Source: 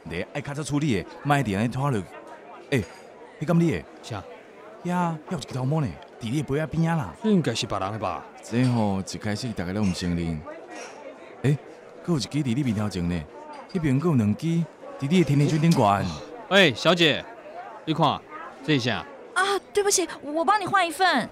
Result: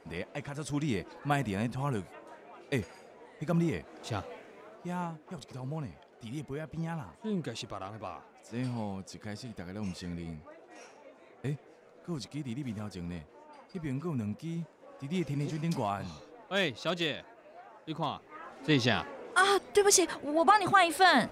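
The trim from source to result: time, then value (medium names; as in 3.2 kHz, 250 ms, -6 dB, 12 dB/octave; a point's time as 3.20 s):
3.77 s -8 dB
4.18 s -1.5 dB
5.15 s -13 dB
18.05 s -13 dB
18.92 s -2 dB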